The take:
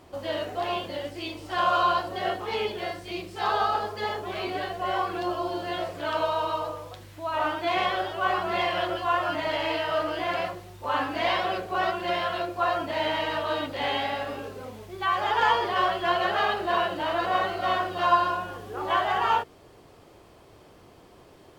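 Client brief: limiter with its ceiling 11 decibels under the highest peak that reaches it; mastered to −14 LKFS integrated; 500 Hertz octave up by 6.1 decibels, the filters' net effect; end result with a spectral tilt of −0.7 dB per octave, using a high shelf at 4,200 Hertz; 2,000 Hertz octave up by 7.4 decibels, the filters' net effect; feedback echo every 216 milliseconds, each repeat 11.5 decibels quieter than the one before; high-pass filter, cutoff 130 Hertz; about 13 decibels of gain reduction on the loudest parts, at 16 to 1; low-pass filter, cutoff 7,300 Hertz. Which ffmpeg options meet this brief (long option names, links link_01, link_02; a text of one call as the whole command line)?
ffmpeg -i in.wav -af "highpass=130,lowpass=7300,equalizer=frequency=500:width_type=o:gain=8,equalizer=frequency=2000:width_type=o:gain=8,highshelf=frequency=4200:gain=5,acompressor=threshold=-25dB:ratio=16,alimiter=level_in=2dB:limit=-24dB:level=0:latency=1,volume=-2dB,aecho=1:1:216|432|648:0.266|0.0718|0.0194,volume=20dB" out.wav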